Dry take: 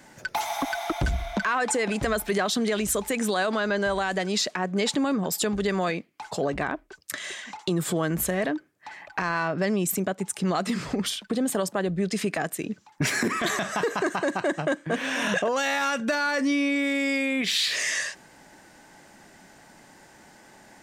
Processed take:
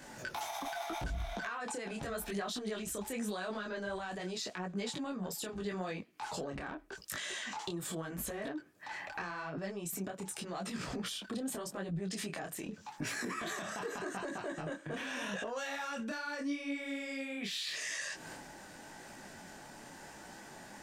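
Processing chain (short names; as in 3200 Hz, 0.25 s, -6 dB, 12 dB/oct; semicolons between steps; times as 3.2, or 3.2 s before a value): notch 2100 Hz, Q 15; transient shaper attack -5 dB, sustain +7 dB; compressor 8:1, threshold -38 dBFS, peak gain reduction 16.5 dB; detuned doubles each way 29 cents; gain +4.5 dB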